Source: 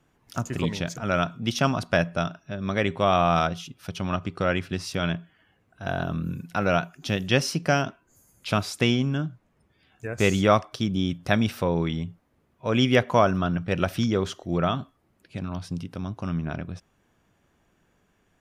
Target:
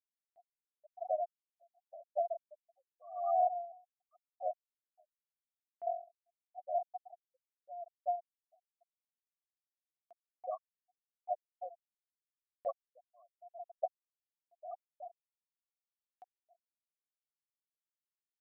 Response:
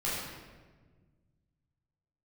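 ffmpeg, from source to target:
-filter_complex "[0:a]aeval=exprs='if(lt(val(0),0),0.251*val(0),val(0))':c=same,acrusher=bits=3:mode=log:mix=0:aa=0.000001,aecho=1:1:370:0.224,asplit=2[s0][s1];[1:a]atrim=start_sample=2205,atrim=end_sample=3087[s2];[s1][s2]afir=irnorm=-1:irlink=0,volume=0.0794[s3];[s0][s3]amix=inputs=2:normalize=0,acompressor=threshold=0.0501:ratio=10,asplit=3[s4][s5][s6];[s4]bandpass=f=730:t=q:w=8,volume=1[s7];[s5]bandpass=f=1090:t=q:w=8,volume=0.501[s8];[s6]bandpass=f=2440:t=q:w=8,volume=0.355[s9];[s7][s8][s9]amix=inputs=3:normalize=0,highshelf=f=4100:g=-6.5,afftfilt=real='re*gte(hypot(re,im),0.0398)':imag='im*gte(hypot(re,im),0.0398)':win_size=1024:overlap=0.75,acompressor=mode=upward:threshold=0.00126:ratio=2.5,aeval=exprs='val(0)*pow(10,-37*(0.5-0.5*cos(2*PI*0.87*n/s))/20)':c=same,volume=4.73"

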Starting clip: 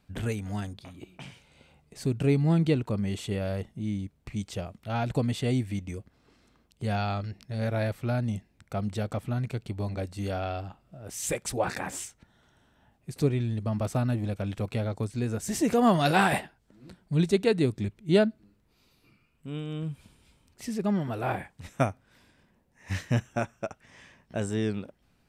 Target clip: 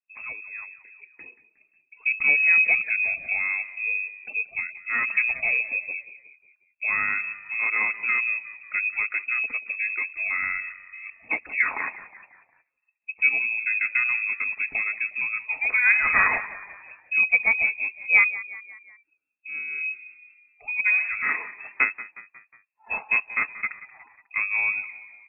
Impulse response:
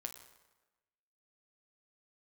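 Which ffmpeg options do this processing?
-filter_complex "[0:a]afftdn=nr=26:nf=-46,equalizer=f=270:t=o:w=0.57:g=-6,aecho=1:1:4.9:0.31,dynaudnorm=f=810:g=3:m=3.16,asplit=2[s0][s1];[s1]asetrate=33038,aresample=44100,atempo=1.33484,volume=0.141[s2];[s0][s2]amix=inputs=2:normalize=0,asplit=5[s3][s4][s5][s6][s7];[s4]adelay=181,afreqshift=36,volume=0.158[s8];[s5]adelay=362,afreqshift=72,volume=0.0794[s9];[s6]adelay=543,afreqshift=108,volume=0.0398[s10];[s7]adelay=724,afreqshift=144,volume=0.0197[s11];[s3][s8][s9][s10][s11]amix=inputs=5:normalize=0,lowpass=f=2300:t=q:w=0.5098,lowpass=f=2300:t=q:w=0.6013,lowpass=f=2300:t=q:w=0.9,lowpass=f=2300:t=q:w=2.563,afreqshift=-2700,volume=0.562"

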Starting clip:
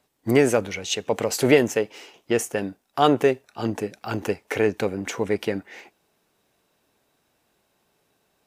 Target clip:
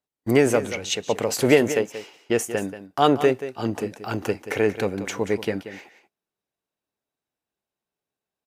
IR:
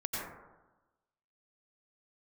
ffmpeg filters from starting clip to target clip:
-filter_complex "[0:a]agate=range=0.0891:threshold=0.00355:ratio=16:detection=peak,asplit=2[s0][s1];[s1]aecho=0:1:182:0.237[s2];[s0][s2]amix=inputs=2:normalize=0"

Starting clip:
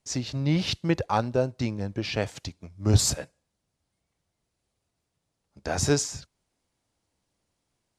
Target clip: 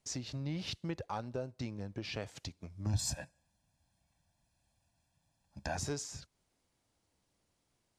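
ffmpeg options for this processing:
-filter_complex "[0:a]asoftclip=type=tanh:threshold=0.316,acompressor=threshold=0.00891:ratio=2.5,asettb=1/sr,asplit=3[s0][s1][s2];[s0]atrim=end=2.864[s3];[s1]atrim=start=2.86:end=5.77,asetpts=PTS-STARTPTS,afade=t=in:d=0.004:c=qsin,afade=t=out:st=2.906:d=0.004:c=qsin,aecho=1:1:1.2:0.88,atrim=end_sample=128331[s4];[s2]atrim=start=5.766[s5];[s3][s4]acrossfade=d=0.004:c1=hsin:c2=qsin[s6];[s6][s5]acrossfade=d=0.004:c1=qsin:c2=hsin,volume=0.891"

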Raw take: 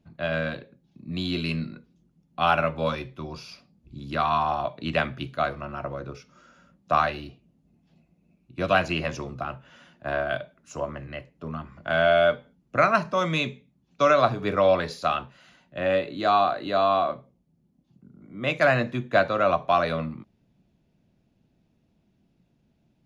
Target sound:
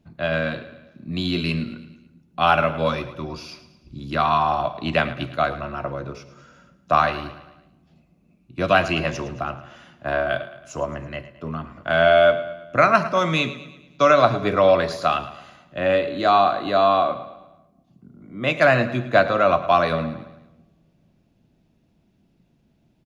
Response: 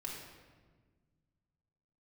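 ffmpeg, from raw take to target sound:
-filter_complex "[0:a]aecho=1:1:109|218|327|436|545:0.178|0.0889|0.0445|0.0222|0.0111,asplit=2[s0][s1];[1:a]atrim=start_sample=2205,asetrate=48510,aresample=44100[s2];[s1][s2]afir=irnorm=-1:irlink=0,volume=0.158[s3];[s0][s3]amix=inputs=2:normalize=0,volume=1.5"

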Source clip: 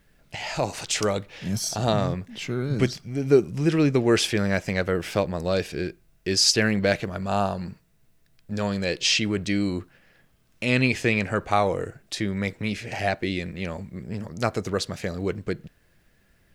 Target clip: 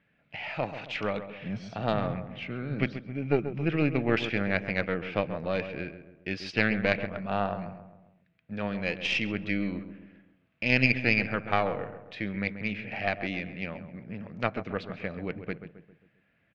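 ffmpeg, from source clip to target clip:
-filter_complex "[0:a]highpass=130,equalizer=f=380:t=q:w=4:g=-8,equalizer=f=970:t=q:w=4:g=-4,equalizer=f=2400:t=q:w=4:g=6,lowpass=f=3000:w=0.5412,lowpass=f=3000:w=1.3066,aeval=exprs='0.531*(cos(1*acos(clip(val(0)/0.531,-1,1)))-cos(1*PI/2))+0.237*(cos(2*acos(clip(val(0)/0.531,-1,1)))-cos(2*PI/2))':c=same,asplit=2[s0][s1];[s1]adelay=134,lowpass=f=1500:p=1,volume=0.316,asplit=2[s2][s3];[s3]adelay=134,lowpass=f=1500:p=1,volume=0.49,asplit=2[s4][s5];[s5]adelay=134,lowpass=f=1500:p=1,volume=0.49,asplit=2[s6][s7];[s7]adelay=134,lowpass=f=1500:p=1,volume=0.49,asplit=2[s8][s9];[s9]adelay=134,lowpass=f=1500:p=1,volume=0.49[s10];[s0][s2][s4][s6][s8][s10]amix=inputs=6:normalize=0,volume=0.562"

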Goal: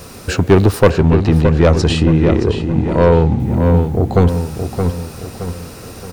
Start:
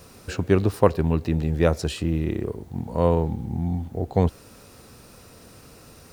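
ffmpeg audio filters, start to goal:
-filter_complex "[0:a]asettb=1/sr,asplit=3[s0][s1][s2];[s0]atrim=end=0.904[s3];[s1]atrim=start=0.9:end=3.4,asetpts=PTS-STARTPTS,afade=t=in:d=0.004:c=qsin,afade=t=out:st=2.496:d=0.004:c=qsin,lowpass=6100[s4];[s2]atrim=start=3.396[s5];[s3][s4]acrossfade=d=0.004:c1=hsin:c2=qsin[s6];[s6][s5]acrossfade=d=0.004:c1=qsin:c2=hsin,asoftclip=type=tanh:threshold=0.178,asplit=2[s7][s8];[s8]adelay=621,lowpass=f=3300:p=1,volume=0.473,asplit=2[s9][s10];[s10]adelay=621,lowpass=f=3300:p=1,volume=0.44,asplit=2[s11][s12];[s12]adelay=621,lowpass=f=3300:p=1,volume=0.44,asplit=2[s13][s14];[s14]adelay=621,lowpass=f=3300:p=1,volume=0.44,asplit=2[s15][s16];[s16]adelay=621,lowpass=f=3300:p=1,volume=0.44[s17];[s7][s9][s11][s13][s15][s17]amix=inputs=6:normalize=0,alimiter=level_in=5.01:limit=0.891:release=50:level=0:latency=1,volume=0.891"

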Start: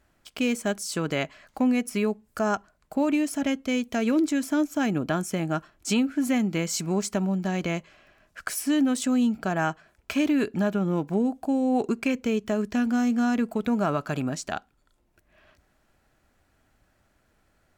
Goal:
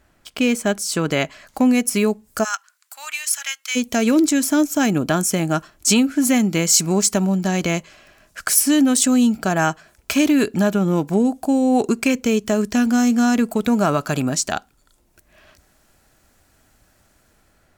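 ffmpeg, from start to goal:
-filter_complex "[0:a]asplit=3[s0][s1][s2];[s0]afade=t=out:st=2.43:d=0.02[s3];[s1]highpass=f=1300:w=0.5412,highpass=f=1300:w=1.3066,afade=t=in:st=2.43:d=0.02,afade=t=out:st=3.75:d=0.02[s4];[s2]afade=t=in:st=3.75:d=0.02[s5];[s3][s4][s5]amix=inputs=3:normalize=0,acrossover=split=4700[s6][s7];[s7]dynaudnorm=f=860:g=3:m=2.99[s8];[s6][s8]amix=inputs=2:normalize=0,volume=2.24"

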